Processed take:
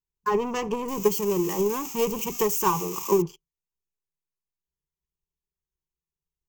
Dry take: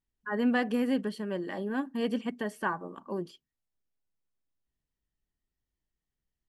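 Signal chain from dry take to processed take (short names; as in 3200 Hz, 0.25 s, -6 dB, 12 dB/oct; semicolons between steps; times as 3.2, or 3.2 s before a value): 0.88–3.22 switching spikes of -25 dBFS; notch 5800 Hz, Q 26; sample leveller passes 3; ripple EQ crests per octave 0.75, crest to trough 17 dB; transient shaper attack +8 dB, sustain +3 dB; bell 2300 Hz -8 dB 0.93 oct; gain -5.5 dB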